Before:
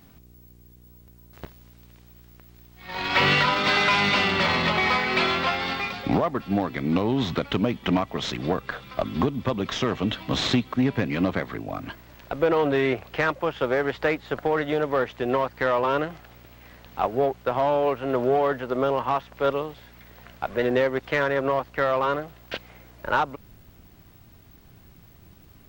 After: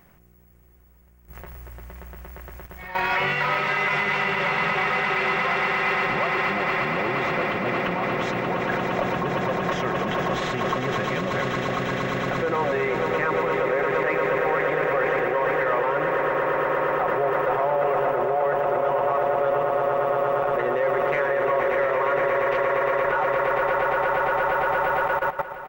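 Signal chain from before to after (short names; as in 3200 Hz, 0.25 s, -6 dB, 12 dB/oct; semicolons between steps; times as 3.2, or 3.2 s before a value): comb 5.5 ms, depth 52%; swelling echo 0.116 s, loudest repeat 8, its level -9.5 dB; level quantiser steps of 15 dB; limiter -22 dBFS, peak gain reduction 4.5 dB; graphic EQ 250/500/1000/2000/4000 Hz -6/+4/+3/+7/-11 dB; gain +5.5 dB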